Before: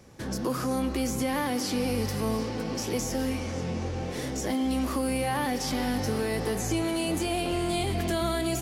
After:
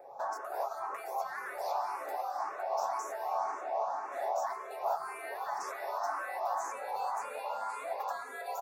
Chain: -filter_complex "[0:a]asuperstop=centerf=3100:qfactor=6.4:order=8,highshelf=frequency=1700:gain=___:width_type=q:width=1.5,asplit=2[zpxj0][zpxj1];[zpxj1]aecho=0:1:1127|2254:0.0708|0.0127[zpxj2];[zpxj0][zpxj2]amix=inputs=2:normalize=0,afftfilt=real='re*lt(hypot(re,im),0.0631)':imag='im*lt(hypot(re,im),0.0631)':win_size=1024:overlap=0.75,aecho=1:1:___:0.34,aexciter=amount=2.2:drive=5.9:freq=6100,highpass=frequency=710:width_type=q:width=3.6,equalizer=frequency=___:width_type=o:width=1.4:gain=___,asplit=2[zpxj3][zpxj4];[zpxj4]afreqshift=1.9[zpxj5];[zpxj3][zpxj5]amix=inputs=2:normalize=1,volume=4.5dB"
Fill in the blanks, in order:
-13.5, 7.2, 10000, -13.5